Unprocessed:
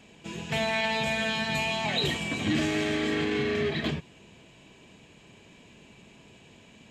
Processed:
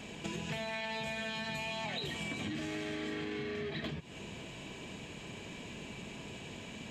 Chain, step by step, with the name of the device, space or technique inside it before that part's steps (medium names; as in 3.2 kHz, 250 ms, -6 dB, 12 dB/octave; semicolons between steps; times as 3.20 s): serial compression, peaks first (compression, threshold -38 dBFS, peak gain reduction 14 dB; compression 2.5:1, threshold -46 dBFS, peak gain reduction 7.5 dB); trim +7.5 dB